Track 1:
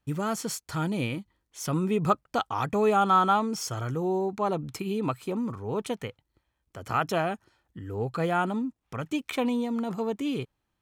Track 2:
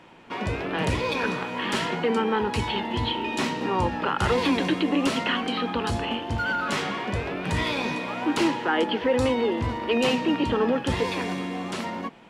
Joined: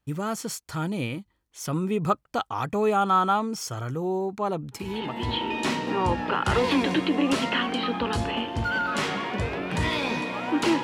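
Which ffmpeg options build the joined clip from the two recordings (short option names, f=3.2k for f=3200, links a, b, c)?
-filter_complex "[0:a]apad=whole_dur=10.83,atrim=end=10.83,atrim=end=5.43,asetpts=PTS-STARTPTS[a];[1:a]atrim=start=2.45:end=8.57,asetpts=PTS-STARTPTS[b];[a][b]acrossfade=d=0.72:c1=tri:c2=tri"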